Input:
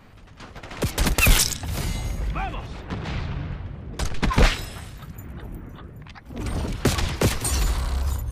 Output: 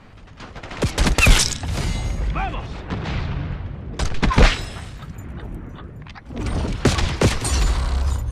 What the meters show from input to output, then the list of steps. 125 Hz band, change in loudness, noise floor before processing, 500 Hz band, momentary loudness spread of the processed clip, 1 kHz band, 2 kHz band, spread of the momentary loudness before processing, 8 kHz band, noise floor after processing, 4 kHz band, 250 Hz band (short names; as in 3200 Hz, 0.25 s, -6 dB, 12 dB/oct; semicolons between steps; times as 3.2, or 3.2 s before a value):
+4.0 dB, +3.5 dB, -45 dBFS, +4.0 dB, 19 LU, +4.0 dB, +4.0 dB, 19 LU, +1.0 dB, -41 dBFS, +3.5 dB, +4.0 dB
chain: Bessel low-pass 7600 Hz, order 4; gain +4 dB